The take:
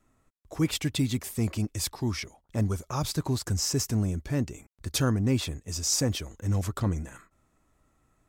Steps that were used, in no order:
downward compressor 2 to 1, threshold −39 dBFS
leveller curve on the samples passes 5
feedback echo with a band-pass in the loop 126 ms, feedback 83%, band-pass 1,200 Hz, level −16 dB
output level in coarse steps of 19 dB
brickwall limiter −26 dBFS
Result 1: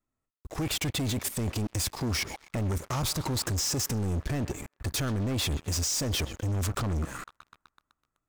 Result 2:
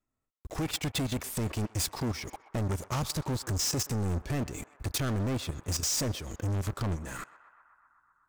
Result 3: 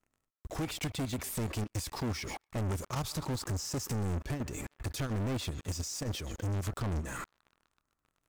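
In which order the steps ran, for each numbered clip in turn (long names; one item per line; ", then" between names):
output level in coarse steps, then downward compressor, then feedback echo with a band-pass in the loop, then leveller curve on the samples, then brickwall limiter
downward compressor, then brickwall limiter, then output level in coarse steps, then leveller curve on the samples, then feedback echo with a band-pass in the loop
brickwall limiter, then feedback echo with a band-pass in the loop, then downward compressor, then output level in coarse steps, then leveller curve on the samples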